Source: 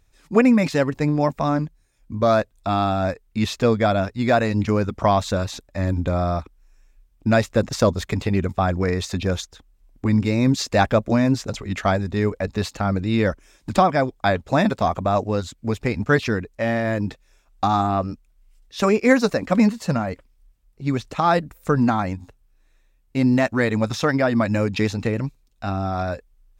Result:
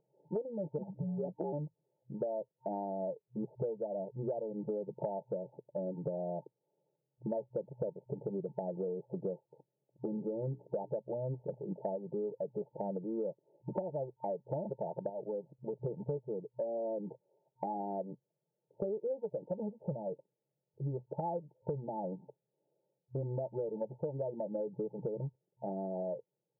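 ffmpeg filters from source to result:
ffmpeg -i in.wav -filter_complex "[0:a]asettb=1/sr,asplit=3[link_01][link_02][link_03];[link_01]atrim=end=0.784[link_04];[link_02]atrim=start=0.78:end=1.53,asetpts=PTS-STARTPTS,afade=type=in:duration=0.004:curve=qsin,afade=type=out:start_time=0.746:duration=0.004:curve=qsin,afreqshift=-330[link_05];[link_03]atrim=start=1.526[link_06];[link_04][link_05]acrossfade=duration=0.004:curve1=hsin:curve2=qsin[link_07];[link_07][link_06]acrossfade=duration=0.004:curve1=qsin:curve2=hsin,asplit=3[link_08][link_09][link_10];[link_08]afade=type=out:start_time=10.09:duration=0.02[link_11];[link_09]bandreject=frequency=60:width_type=h:width=6,bandreject=frequency=120:width_type=h:width=6,bandreject=frequency=180:width_type=h:width=6,bandreject=frequency=240:width_type=h:width=6,bandreject=frequency=300:width_type=h:width=6,bandreject=frequency=360:width_type=h:width=6,bandreject=frequency=420:width_type=h:width=6,afade=type=in:start_time=10.09:duration=0.02,afade=type=out:start_time=10.88:duration=0.02[link_12];[link_10]afade=type=in:start_time=10.88:duration=0.02[link_13];[link_11][link_12][link_13]amix=inputs=3:normalize=0,asettb=1/sr,asplit=3[link_14][link_15][link_16];[link_14]atrim=end=15.094[link_17];[link_15]atrim=start=15.09:end=15.86,asetpts=PTS-STARTPTS,afade=type=in:duration=0.004:curve=qsin,afade=type=out:start_time=0.766:duration=0.004:curve=qsin,acompressor=threshold=-28dB:ratio=2.5:attack=3.2:release=140:knee=1:detection=peak[link_18];[link_16]atrim=start=15.856[link_19];[link_17][link_18]acrossfade=duration=0.004:curve1=hsin:curve2=qsin[link_20];[link_20][link_19]acrossfade=duration=0.004:curve1=qsin:curve2=hsin,afftfilt=real='re*between(b*sr/4096,120,910)':imag='im*between(b*sr/4096,120,910)':win_size=4096:overlap=0.75,aecho=1:1:2:0.98,acompressor=threshold=-29dB:ratio=10,volume=-5dB" out.wav

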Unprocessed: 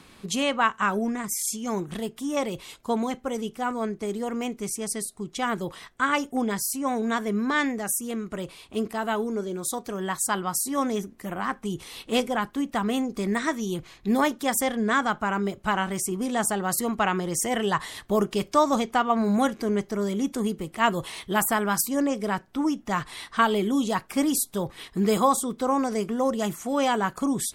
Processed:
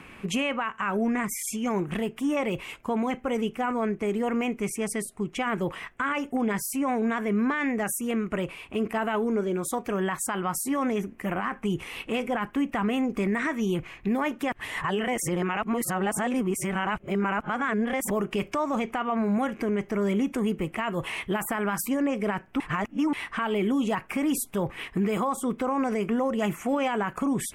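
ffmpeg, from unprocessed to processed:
ffmpeg -i in.wav -filter_complex "[0:a]asplit=5[link_01][link_02][link_03][link_04][link_05];[link_01]atrim=end=14.522[link_06];[link_02]atrim=start=14.518:end=18.102,asetpts=PTS-STARTPTS,areverse[link_07];[link_03]atrim=start=18.098:end=22.602[link_08];[link_04]atrim=start=22.598:end=23.132,asetpts=PTS-STARTPTS,areverse[link_09];[link_05]atrim=start=23.128[link_10];[link_06][link_07]acrossfade=duration=0.004:curve1=hsin:curve2=hsin[link_11];[link_11][link_08]acrossfade=duration=0.004:curve1=hsin:curve2=hsin[link_12];[link_12][link_09]acrossfade=duration=0.004:curve1=hsin:curve2=hsin[link_13];[link_13][link_10]acrossfade=duration=0.004:curve1=hsin:curve2=hsin,highshelf=frequency=3200:width_type=q:width=3:gain=-7.5,acompressor=threshold=-24dB:ratio=6,alimiter=limit=-22.5dB:level=0:latency=1:release=15,volume=4dB" out.wav

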